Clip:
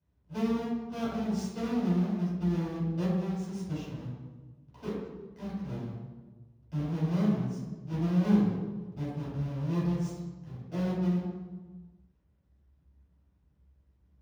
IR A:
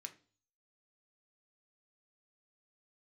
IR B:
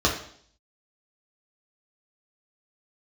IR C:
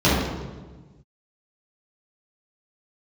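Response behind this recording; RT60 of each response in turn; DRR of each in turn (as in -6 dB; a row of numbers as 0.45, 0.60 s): C; 0.40, 0.60, 1.3 s; 5.5, -3.0, -10.5 dB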